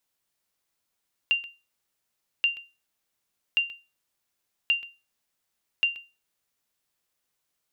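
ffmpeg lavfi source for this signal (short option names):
-f lavfi -i "aevalsrc='0.178*(sin(2*PI*2780*mod(t,1.13))*exp(-6.91*mod(t,1.13)/0.28)+0.141*sin(2*PI*2780*max(mod(t,1.13)-0.13,0))*exp(-6.91*max(mod(t,1.13)-0.13,0)/0.28))':d=5.65:s=44100"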